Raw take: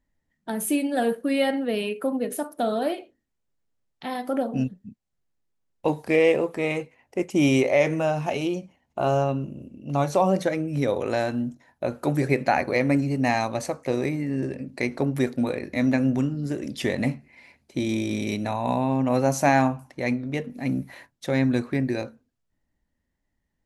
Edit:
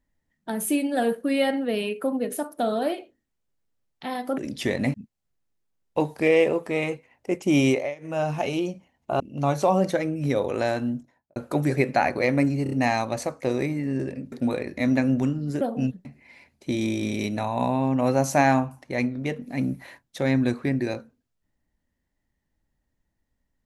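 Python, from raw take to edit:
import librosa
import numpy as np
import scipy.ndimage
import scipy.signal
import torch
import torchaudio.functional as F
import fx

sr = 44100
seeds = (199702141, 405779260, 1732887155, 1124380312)

y = fx.studio_fade_out(x, sr, start_s=11.42, length_s=0.46)
y = fx.edit(y, sr, fx.swap(start_s=4.38, length_s=0.44, other_s=16.57, other_length_s=0.56),
    fx.fade_down_up(start_s=7.58, length_s=0.55, db=-23.5, fade_s=0.25),
    fx.cut(start_s=9.08, length_s=0.64),
    fx.stutter(start_s=13.15, slice_s=0.03, count=4),
    fx.cut(start_s=14.75, length_s=0.53), tone=tone)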